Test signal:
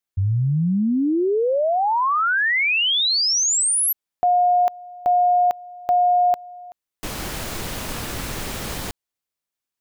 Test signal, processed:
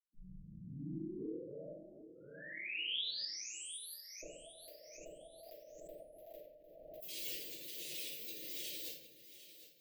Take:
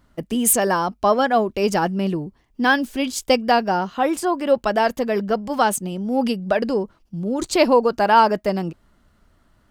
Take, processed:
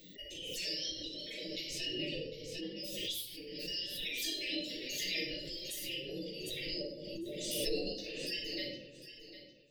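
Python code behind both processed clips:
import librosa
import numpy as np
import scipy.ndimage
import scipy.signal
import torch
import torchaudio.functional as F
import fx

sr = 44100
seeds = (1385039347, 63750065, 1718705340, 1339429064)

p1 = fx.bin_expand(x, sr, power=2.0)
p2 = fx.wow_flutter(p1, sr, seeds[0], rate_hz=2.1, depth_cents=29.0)
p3 = fx.spec_gate(p2, sr, threshold_db=-30, keep='weak')
p4 = scipy.signal.sosfilt(scipy.signal.cheby1(4, 1.0, [590.0, 1800.0], 'bandstop', fs=sr, output='sos'), p3)
p5 = fx.high_shelf_res(p4, sr, hz=2300.0, db=12.0, q=1.5)
p6 = p5 + 0.46 * np.pad(p5, (int(6.3 * sr / 1000.0), 0))[:len(p5)]
p7 = fx.over_compress(p6, sr, threshold_db=-47.0, ratio=-0.5)
p8 = fx.peak_eq(p7, sr, hz=560.0, db=11.5, octaves=2.3)
p9 = p8 + fx.echo_feedback(p8, sr, ms=753, feedback_pct=33, wet_db=-13.5, dry=0)
p10 = fx.room_shoebox(p9, sr, seeds[1], volume_m3=160.0, walls='mixed', distance_m=3.3)
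p11 = fx.pre_swell(p10, sr, db_per_s=31.0)
y = p11 * 10.0 ** (-7.0 / 20.0)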